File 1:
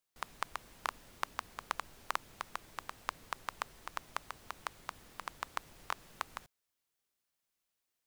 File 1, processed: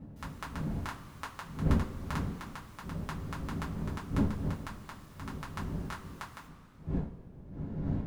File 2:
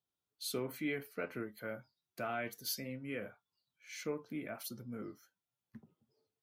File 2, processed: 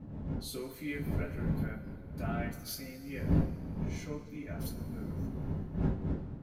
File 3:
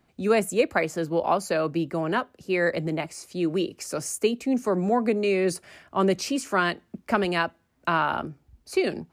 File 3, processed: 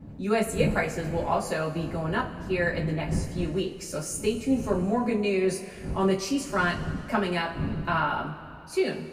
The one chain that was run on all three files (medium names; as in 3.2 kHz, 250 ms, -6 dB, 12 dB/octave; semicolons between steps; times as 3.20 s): wind noise 190 Hz -34 dBFS; two-slope reverb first 0.2 s, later 2.5 s, from -21 dB, DRR -5 dB; trim -8.5 dB